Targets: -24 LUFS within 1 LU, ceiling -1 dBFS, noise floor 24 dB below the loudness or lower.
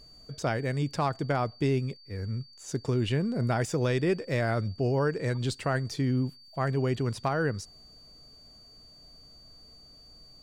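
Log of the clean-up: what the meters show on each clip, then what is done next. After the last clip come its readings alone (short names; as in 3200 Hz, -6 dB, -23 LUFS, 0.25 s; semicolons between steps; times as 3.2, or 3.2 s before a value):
steady tone 4600 Hz; tone level -52 dBFS; loudness -29.5 LUFS; peak -16.0 dBFS; loudness target -24.0 LUFS
-> notch 4600 Hz, Q 30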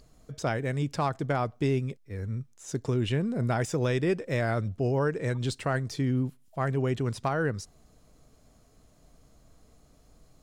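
steady tone none; loudness -29.5 LUFS; peak -16.0 dBFS; loudness target -24.0 LUFS
-> gain +5.5 dB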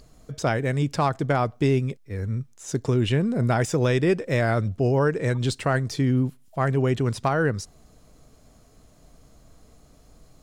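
loudness -24.0 LUFS; peak -10.5 dBFS; noise floor -55 dBFS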